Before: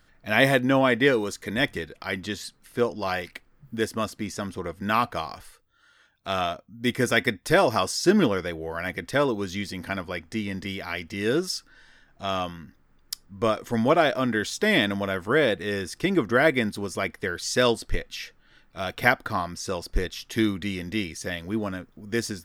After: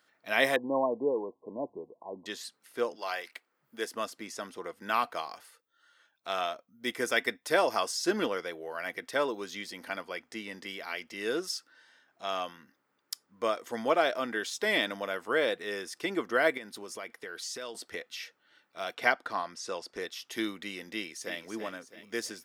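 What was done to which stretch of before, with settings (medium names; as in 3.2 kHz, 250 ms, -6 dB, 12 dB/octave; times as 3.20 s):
0.56–2.26 s: brick-wall FIR low-pass 1.1 kHz
2.95–3.85 s: high-pass 680 Hz -> 280 Hz 6 dB/octave
16.57–17.75 s: compression 10:1, threshold -29 dBFS
18.95–20.01 s: low-pass 8.3 kHz
20.93–21.37 s: echo throw 330 ms, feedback 50%, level -9 dB
whole clip: high-pass 380 Hz 12 dB/octave; band-stop 1.7 kHz, Q 29; trim -5 dB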